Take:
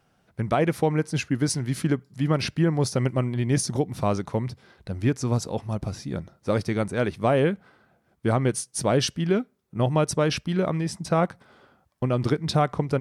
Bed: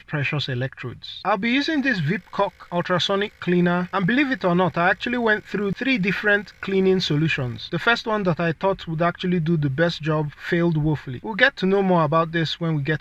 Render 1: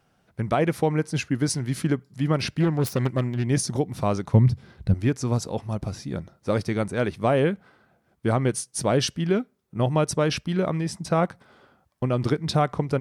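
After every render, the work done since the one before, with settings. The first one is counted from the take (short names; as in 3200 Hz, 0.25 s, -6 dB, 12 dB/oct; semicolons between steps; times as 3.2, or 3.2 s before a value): 2.6–3.47 self-modulated delay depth 0.24 ms; 4.33–4.94 tone controls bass +14 dB, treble 0 dB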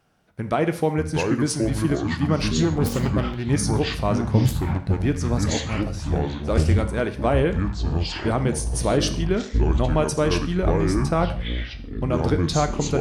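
echoes that change speed 0.43 s, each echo -6 st, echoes 3; non-linear reverb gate 0.19 s falling, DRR 8 dB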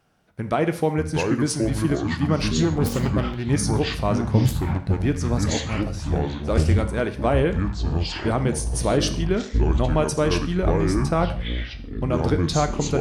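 nothing audible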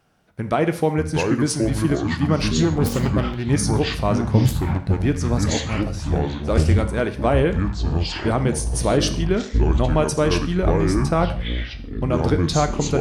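gain +2 dB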